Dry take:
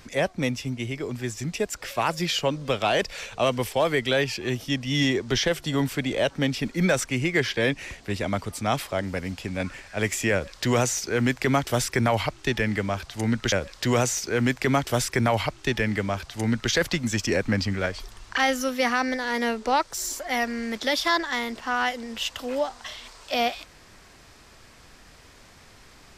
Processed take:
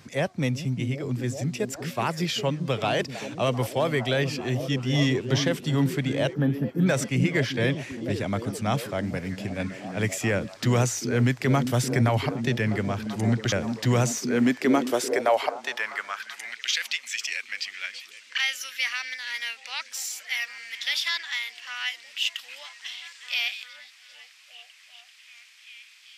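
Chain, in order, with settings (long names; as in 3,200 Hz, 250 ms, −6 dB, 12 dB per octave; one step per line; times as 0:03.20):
gain on a spectral selection 0:06.33–0:06.87, 1,800–11,000 Hz −22 dB
on a send: echo through a band-pass that steps 390 ms, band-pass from 210 Hz, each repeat 0.7 octaves, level −4 dB
on the sum: high-pass filter sweep 120 Hz → 2,500 Hz, 0:13.97–0:16.63
level −3 dB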